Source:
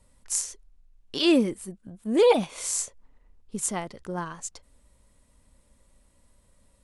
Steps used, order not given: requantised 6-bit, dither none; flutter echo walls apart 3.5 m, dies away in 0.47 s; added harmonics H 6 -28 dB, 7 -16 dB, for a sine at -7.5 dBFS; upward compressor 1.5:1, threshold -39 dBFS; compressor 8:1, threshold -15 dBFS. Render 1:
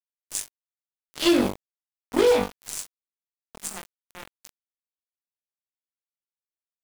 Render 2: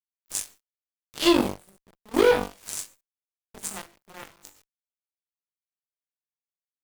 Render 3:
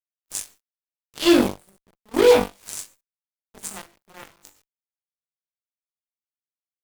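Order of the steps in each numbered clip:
flutter echo > added harmonics > upward compressor > requantised > compressor; flutter echo > requantised > compressor > added harmonics > upward compressor; compressor > flutter echo > upward compressor > requantised > added harmonics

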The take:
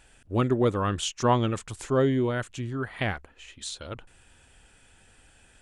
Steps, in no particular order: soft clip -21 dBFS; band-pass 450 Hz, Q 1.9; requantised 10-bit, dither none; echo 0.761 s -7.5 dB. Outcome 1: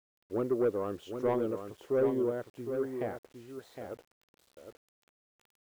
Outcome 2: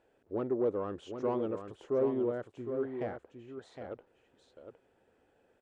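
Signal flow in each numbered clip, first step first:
band-pass > soft clip > echo > requantised; soft clip > echo > requantised > band-pass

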